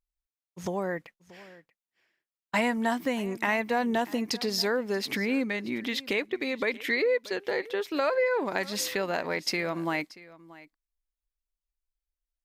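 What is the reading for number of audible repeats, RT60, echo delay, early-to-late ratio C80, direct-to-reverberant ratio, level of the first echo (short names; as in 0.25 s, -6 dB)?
1, none, 0.632 s, none, none, -20.0 dB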